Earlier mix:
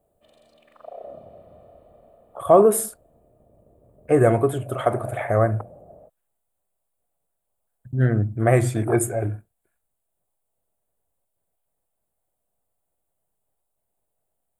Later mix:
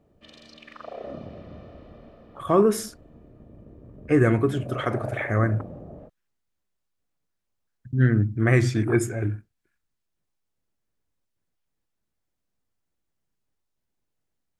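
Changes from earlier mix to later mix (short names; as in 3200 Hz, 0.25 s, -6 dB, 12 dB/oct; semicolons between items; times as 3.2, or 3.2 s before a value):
background +11.0 dB; master: add EQ curve 130 Hz 0 dB, 290 Hz +3 dB, 680 Hz -13 dB, 980 Hz -4 dB, 1800 Hz +4 dB, 3600 Hz +2 dB, 5600 Hz +10 dB, 8500 Hz -11 dB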